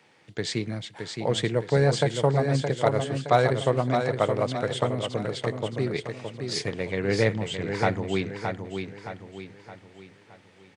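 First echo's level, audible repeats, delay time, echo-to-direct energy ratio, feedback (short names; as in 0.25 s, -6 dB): -6.0 dB, 4, 0.618 s, -5.0 dB, 43%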